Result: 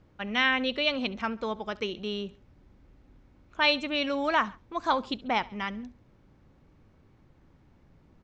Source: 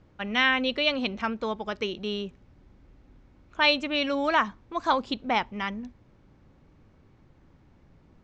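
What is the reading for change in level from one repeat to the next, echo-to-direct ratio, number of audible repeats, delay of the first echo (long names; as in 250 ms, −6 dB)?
−5.5 dB, −21.0 dB, 2, 69 ms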